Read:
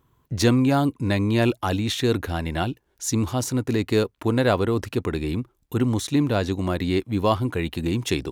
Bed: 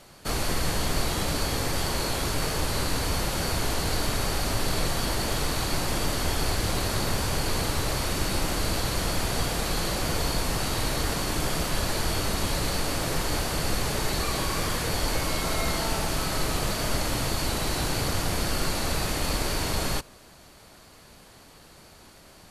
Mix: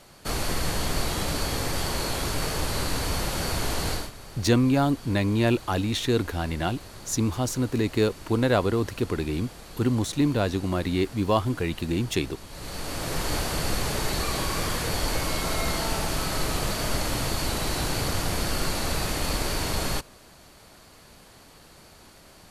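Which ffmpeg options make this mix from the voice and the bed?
ffmpeg -i stem1.wav -i stem2.wav -filter_complex "[0:a]adelay=4050,volume=-2dB[link_01];[1:a]volume=16dB,afade=type=out:start_time=3.9:duration=0.21:silence=0.158489,afade=type=in:start_time=12.49:duration=0.81:silence=0.149624[link_02];[link_01][link_02]amix=inputs=2:normalize=0" out.wav

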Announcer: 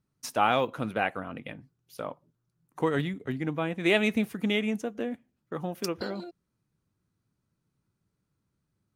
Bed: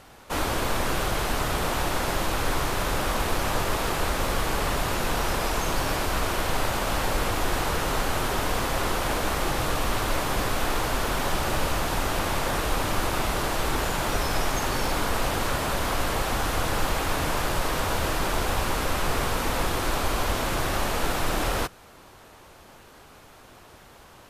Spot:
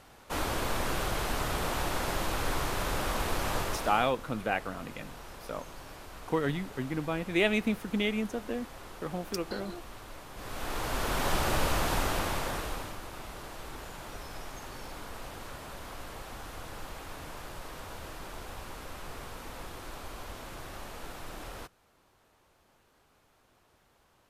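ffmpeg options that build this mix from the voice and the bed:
ffmpeg -i stem1.wav -i stem2.wav -filter_complex "[0:a]adelay=3500,volume=-2.5dB[link_01];[1:a]volume=12.5dB,afade=type=out:start_time=3.57:duration=0.56:silence=0.177828,afade=type=in:start_time=10.34:duration=0.99:silence=0.125893,afade=type=out:start_time=11.93:duration=1.05:silence=0.188365[link_02];[link_01][link_02]amix=inputs=2:normalize=0" out.wav

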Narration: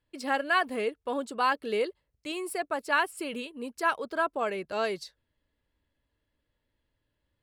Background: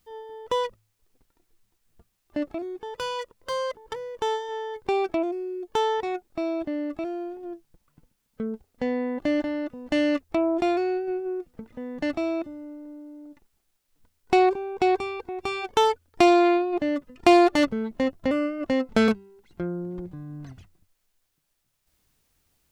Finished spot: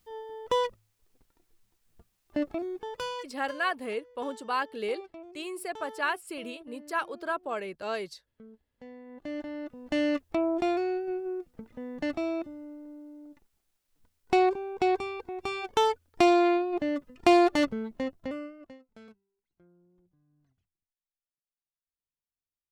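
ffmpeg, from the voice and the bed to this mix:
ffmpeg -i stem1.wav -i stem2.wav -filter_complex "[0:a]adelay=3100,volume=-3.5dB[link_01];[1:a]volume=15.5dB,afade=type=out:start_time=2.77:duration=0.82:silence=0.105925,afade=type=in:start_time=9.05:duration=1:silence=0.149624,afade=type=out:start_time=17.59:duration=1.2:silence=0.0398107[link_02];[link_01][link_02]amix=inputs=2:normalize=0" out.wav

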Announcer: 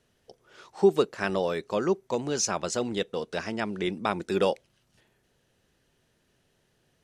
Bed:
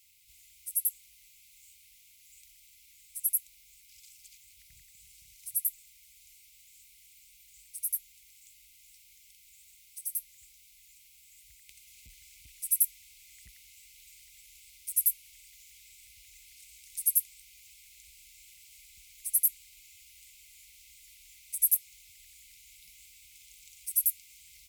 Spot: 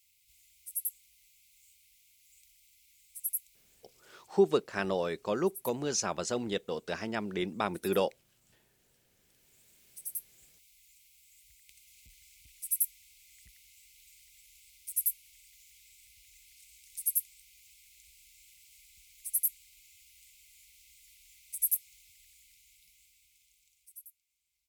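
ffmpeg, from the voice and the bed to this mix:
ffmpeg -i stem1.wav -i stem2.wav -filter_complex "[0:a]adelay=3550,volume=-4dB[link_01];[1:a]volume=5dB,afade=type=out:start_time=3.42:duration=0.96:silence=0.354813,afade=type=in:start_time=9.16:duration=0.75:silence=0.298538,afade=type=out:start_time=21.96:duration=2.13:silence=0.0668344[link_02];[link_01][link_02]amix=inputs=2:normalize=0" out.wav

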